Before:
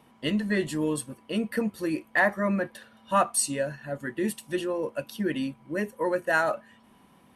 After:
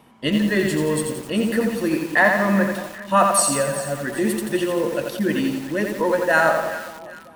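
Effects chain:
delay that swaps between a low-pass and a high-pass 195 ms, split 1,100 Hz, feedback 63%, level −10 dB
feedback echo at a low word length 86 ms, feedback 55%, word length 7 bits, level −4 dB
level +6 dB

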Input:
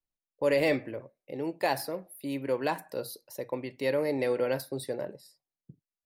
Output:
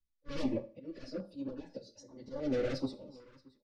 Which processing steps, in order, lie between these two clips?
wavefolder on the positive side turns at −25.5 dBFS
Butterworth low-pass 6,000 Hz 36 dB per octave
bass and treble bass +15 dB, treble +5 dB
comb filter 3.5 ms, depth 61%
dynamic equaliser 490 Hz, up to +6 dB, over −39 dBFS, Q 1.8
volume swells 539 ms
soft clipping −25.5 dBFS, distortion −7 dB
time stretch by phase vocoder 0.6×
sample-and-hold tremolo
single-tap delay 627 ms −23 dB
convolution reverb RT60 0.40 s, pre-delay 27 ms, DRR 13 dB
notch on a step sequencer 2.5 Hz 700–2,500 Hz
level +2.5 dB

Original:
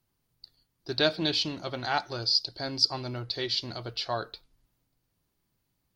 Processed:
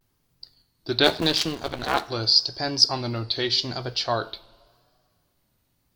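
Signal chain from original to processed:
0:01.03–0:02.08: sub-harmonics by changed cycles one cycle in 2, muted
coupled-rooms reverb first 0.42 s, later 2.3 s, from −18 dB, DRR 14 dB
pitch vibrato 0.85 Hz 91 cents
level +6.5 dB

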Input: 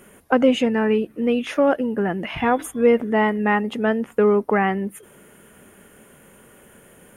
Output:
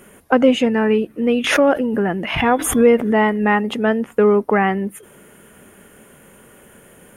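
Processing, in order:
0:01.44–0:03.79: background raised ahead of every attack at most 64 dB per second
level +3 dB

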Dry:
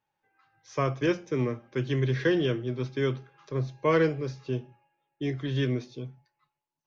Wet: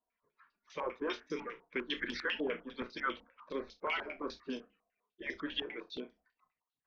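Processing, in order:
harmonic-percussive split with one part muted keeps percussive
0:01.27–0:02.28: parametric band 650 Hz −10.5 dB 0.72 octaves
brickwall limiter −27 dBFS, peak gain reduction 10 dB
flutter between parallel walls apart 5.7 metres, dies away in 0.2 s
regular buffer underruns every 0.35 s, samples 64, zero, from 0:00.37
low-pass on a step sequencer 10 Hz 830–4,900 Hz
level −2 dB

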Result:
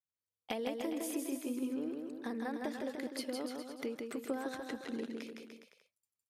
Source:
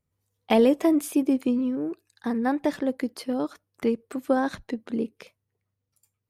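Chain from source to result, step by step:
noise gate −56 dBFS, range −17 dB
high-pass filter 450 Hz 6 dB per octave
parametric band 1,000 Hz −4.5 dB 1.4 octaves
downward compressor 6 to 1, threshold −34 dBFS, peak gain reduction 13.5 dB
on a send: bouncing-ball delay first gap 160 ms, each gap 0.85×, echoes 5
on the sum: level −2.5 dB

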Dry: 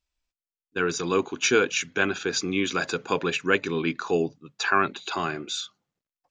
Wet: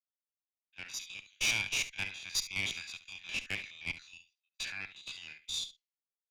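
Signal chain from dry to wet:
spectrum averaged block by block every 50 ms
Chebyshev high-pass filter 2,000 Hz, order 5
high-shelf EQ 5,500 Hz −6.5 dB
in parallel at −2 dB: downward compressor, threshold −43 dBFS, peak gain reduction 15 dB
on the sum: tube saturation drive 26 dB, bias 0.6
on a send: single-tap delay 71 ms −12.5 dB
on the sum: multiband upward and downward expander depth 100%

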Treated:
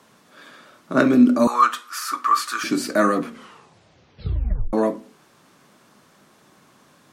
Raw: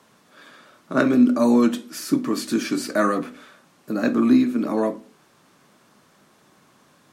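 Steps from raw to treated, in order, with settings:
0:01.47–0:02.64: high-pass with resonance 1,200 Hz, resonance Q 9.9
0:03.22: tape stop 1.51 s
level +2 dB

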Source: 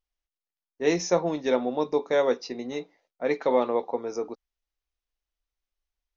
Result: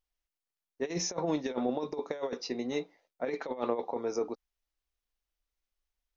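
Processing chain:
compressor whose output falls as the input rises −27 dBFS, ratio −0.5
level −4 dB

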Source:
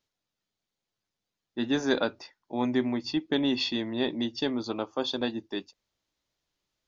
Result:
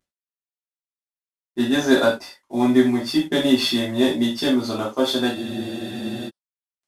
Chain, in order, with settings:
variable-slope delta modulation 64 kbit/s
reverb whose tail is shaped and stops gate 120 ms falling, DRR −6 dB
frozen spectrum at 0:05.37, 0.91 s
level +1.5 dB

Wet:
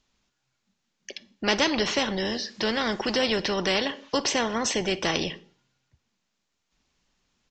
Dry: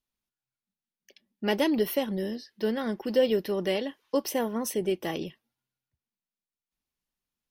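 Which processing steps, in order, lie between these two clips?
0:02.26–0:03.24: bit-depth reduction 12 bits, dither triangular
downsampling to 16,000 Hz
on a send at −21.5 dB: convolution reverb RT60 0.45 s, pre-delay 39 ms
on the sum: every bin compressed towards the loudest bin 2 to 1
level +3 dB

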